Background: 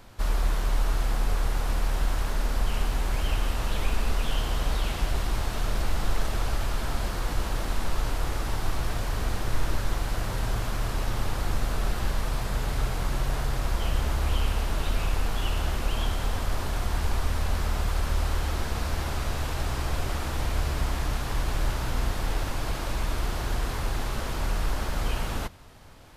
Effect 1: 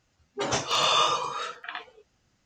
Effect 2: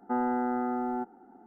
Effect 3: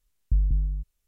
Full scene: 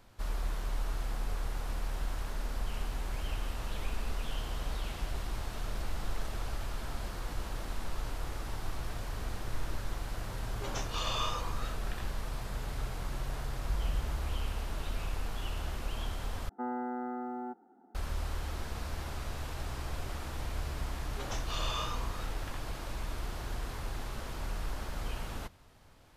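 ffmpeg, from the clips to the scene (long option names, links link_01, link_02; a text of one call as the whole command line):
ffmpeg -i bed.wav -i cue0.wav -i cue1.wav -i cue2.wav -filter_complex "[1:a]asplit=2[link_01][link_02];[0:a]volume=-9.5dB[link_03];[3:a]acrusher=bits=11:mix=0:aa=0.000001[link_04];[2:a]highpass=140[link_05];[link_03]asplit=2[link_06][link_07];[link_06]atrim=end=16.494[link_08];[link_05]atrim=end=1.46,asetpts=PTS-STARTPTS,volume=-7.5dB[link_09];[link_07]atrim=start=17.946[link_10];[link_01]atrim=end=2.45,asetpts=PTS-STARTPTS,volume=-12.5dB,afade=type=in:duration=0.004:curve=hsin,afade=type=out:start_time=2.446:duration=0.004:curve=hsin,adelay=10230[link_11];[link_04]atrim=end=1.07,asetpts=PTS-STARTPTS,volume=-11.5dB,afade=type=in:duration=0.004:curve=hsin,afade=type=out:start_time=1.066:duration=0.004:curve=hsin,adelay=13380[link_12];[link_02]atrim=end=2.45,asetpts=PTS-STARTPTS,volume=-14.5dB,afade=type=in:duration=0.004:curve=hsin,afade=type=out:start_time=2.446:duration=0.004:curve=hsin,adelay=20790[link_13];[link_08][link_09]acrossfade=duration=0.004:curve1=hsin:curve2=hsin[link_14];[link_14][link_10]acrossfade=duration=0.004:curve1=hsin:curve2=hsin[link_15];[link_15][link_11][link_12][link_13]amix=inputs=4:normalize=0" out.wav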